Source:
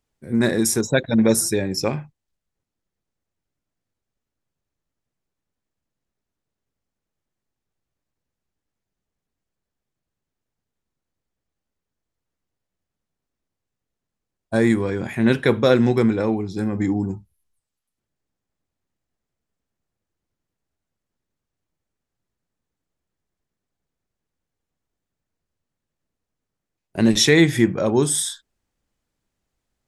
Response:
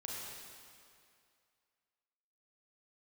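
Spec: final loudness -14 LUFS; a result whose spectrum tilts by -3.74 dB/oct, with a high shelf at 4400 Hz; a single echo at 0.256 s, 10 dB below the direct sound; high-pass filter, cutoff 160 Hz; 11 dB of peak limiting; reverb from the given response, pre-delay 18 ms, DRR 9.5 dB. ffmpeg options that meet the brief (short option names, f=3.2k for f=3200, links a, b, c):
-filter_complex "[0:a]highpass=160,highshelf=f=4.4k:g=6.5,alimiter=limit=-10.5dB:level=0:latency=1,aecho=1:1:256:0.316,asplit=2[a][b];[1:a]atrim=start_sample=2205,adelay=18[c];[b][c]afir=irnorm=-1:irlink=0,volume=-9.5dB[d];[a][d]amix=inputs=2:normalize=0,volume=7dB"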